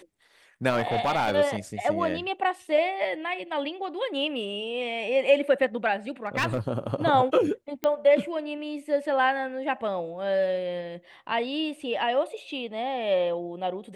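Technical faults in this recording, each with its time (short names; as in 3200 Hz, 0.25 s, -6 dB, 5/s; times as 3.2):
0.69–1.34 clipped -19.5 dBFS
6.26–6.6 clipped -20.5 dBFS
7.84 pop -14 dBFS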